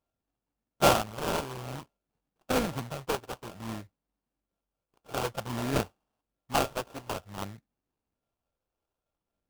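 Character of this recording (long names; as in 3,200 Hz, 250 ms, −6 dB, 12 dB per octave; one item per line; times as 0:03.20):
a buzz of ramps at a fixed pitch in blocks of 32 samples
phaser sweep stages 12, 0.54 Hz, lowest notch 200–1,500 Hz
aliases and images of a low sample rate 2,000 Hz, jitter 20%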